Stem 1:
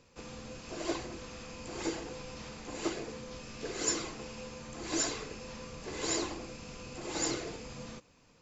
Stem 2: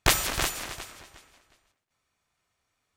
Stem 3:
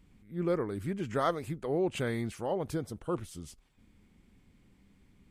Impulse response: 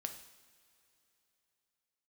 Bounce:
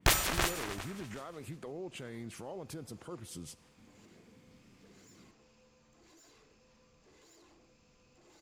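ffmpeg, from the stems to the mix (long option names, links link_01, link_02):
-filter_complex "[0:a]alimiter=level_in=5.5dB:limit=-24dB:level=0:latency=1:release=53,volume=-5.5dB,asoftclip=type=tanh:threshold=-38dB,adelay=1200,volume=-19.5dB[link_01];[1:a]volume=-2dB[link_02];[2:a]highpass=frequency=98:width=0.5412,highpass=frequency=98:width=1.3066,acompressor=threshold=-37dB:ratio=6,alimiter=level_in=13.5dB:limit=-24dB:level=0:latency=1:release=141,volume=-13.5dB,volume=1dB,asplit=2[link_03][link_04];[link_04]volume=-9.5dB[link_05];[3:a]atrim=start_sample=2205[link_06];[link_05][link_06]afir=irnorm=-1:irlink=0[link_07];[link_01][link_02][link_03][link_07]amix=inputs=4:normalize=0,aeval=exprs='clip(val(0),-1,0.266)':channel_layout=same,adynamicequalizer=threshold=0.00355:dfrequency=2700:dqfactor=0.7:tfrequency=2700:tqfactor=0.7:attack=5:release=100:ratio=0.375:range=3:mode=cutabove:tftype=highshelf"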